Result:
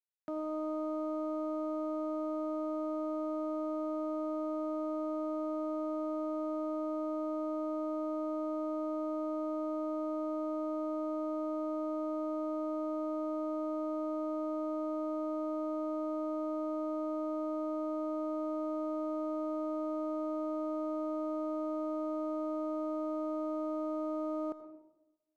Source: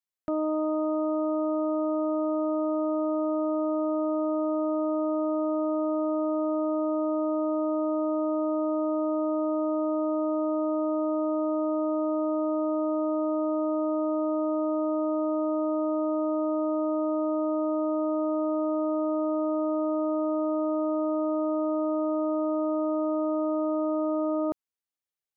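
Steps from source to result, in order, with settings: high-pass 180 Hz 12 dB/octave; peak limiter -24 dBFS, peak gain reduction 4.5 dB; crossover distortion -56.5 dBFS; on a send: reverberation RT60 0.95 s, pre-delay 76 ms, DRR 10 dB; on the sum: trim -5 dB

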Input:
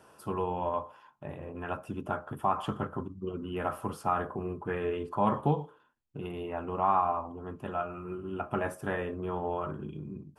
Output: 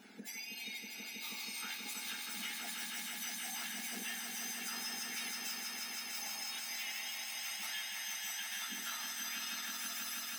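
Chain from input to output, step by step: spectrum inverted on a logarithmic axis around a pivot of 1.5 kHz; compression 12:1, threshold -46 dBFS, peak gain reduction 21 dB; bass shelf 130 Hz -10 dB; hard clipper -37 dBFS, distortion -39 dB; on a send: echo with a slow build-up 161 ms, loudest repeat 5, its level -5.5 dB; on the sum: trim +3 dB

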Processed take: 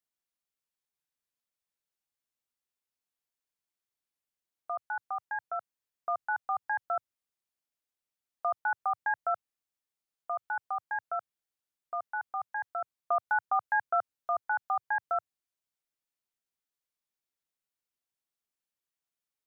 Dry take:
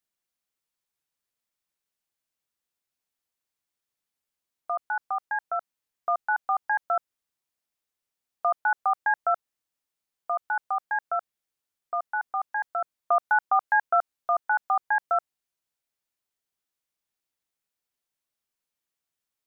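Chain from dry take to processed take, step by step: dynamic bell 110 Hz, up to +8 dB, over -56 dBFS, Q 1.3; trim -6 dB

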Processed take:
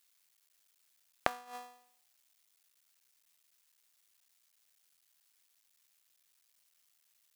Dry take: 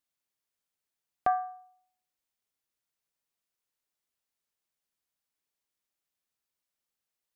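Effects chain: cycle switcher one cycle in 3, muted; inverted gate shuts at -30 dBFS, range -24 dB; tilt shelf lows -7.5 dB, about 1.1 kHz; trim +10 dB

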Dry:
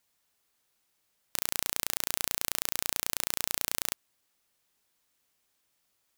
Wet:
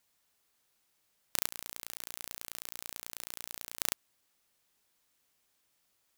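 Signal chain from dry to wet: 1.47–3.81 s: compressor with a negative ratio -40 dBFS, ratio -0.5

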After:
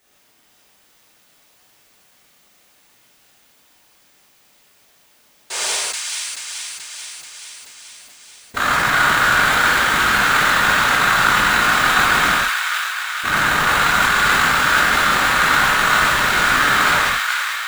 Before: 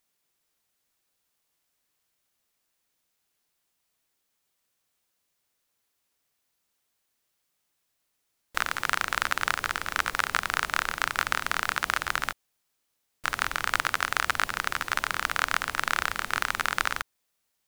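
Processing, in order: high-pass 45 Hz; peaking EQ 15 kHz -8.5 dB 2 oct; waveshaping leveller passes 2; whisper effect; painted sound noise, 5.50–5.76 s, 350–9900 Hz -34 dBFS; power-law waveshaper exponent 0.7; on a send: feedback echo behind a high-pass 432 ms, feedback 66%, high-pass 1.5 kHz, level -4 dB; on the sum: gated-style reverb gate 180 ms flat, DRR -6 dB; decay stretcher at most 23 dB/s; trim -1 dB

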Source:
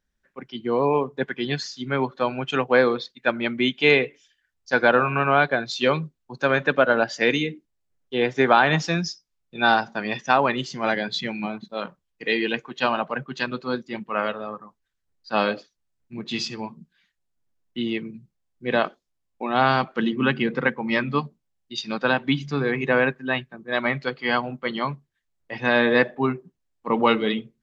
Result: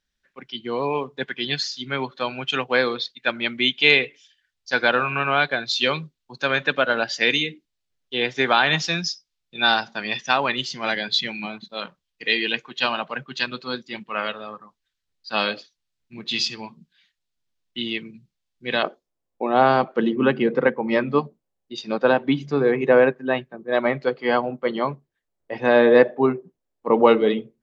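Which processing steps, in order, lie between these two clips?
peaking EQ 3.8 kHz +12 dB 2 oct, from 18.83 s 490 Hz; trim -4.5 dB

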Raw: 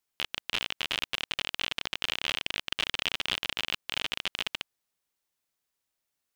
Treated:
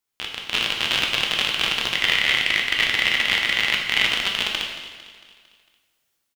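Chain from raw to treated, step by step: 1.95–4.05 s: peaking EQ 2 kHz +15 dB 0.27 oct; level rider gain up to 8.5 dB; feedback delay 226 ms, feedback 52%, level -15 dB; plate-style reverb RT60 1.1 s, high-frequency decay 1×, DRR 0.5 dB

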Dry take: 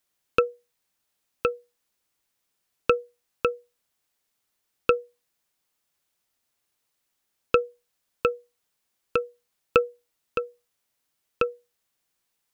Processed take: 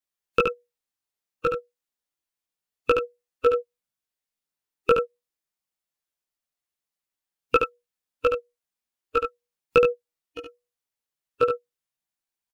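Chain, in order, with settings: chorus voices 4, 0.27 Hz, delay 18 ms, depth 3.8 ms; in parallel at +1.5 dB: peak limiter -20 dBFS, peak gain reduction 10.5 dB; on the sum: spectral noise reduction 18 dB; delay 72 ms -5.5 dB; trim +1.5 dB

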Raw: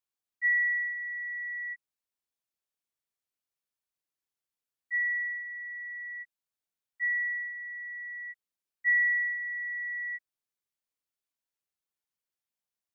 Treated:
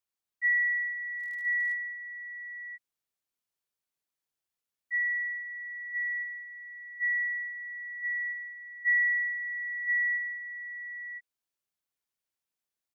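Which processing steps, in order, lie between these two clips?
delay 1020 ms -5 dB; 1.17–1.73 s: crackle 78 per s -43 dBFS

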